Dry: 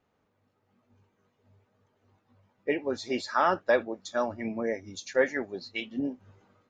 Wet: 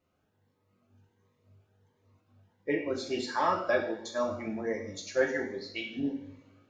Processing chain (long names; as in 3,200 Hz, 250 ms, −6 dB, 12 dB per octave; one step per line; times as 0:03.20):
coupled-rooms reverb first 0.66 s, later 3.3 s, from −27 dB, DRR 0.5 dB
phaser whose notches keep moving one way rising 1.4 Hz
level −2.5 dB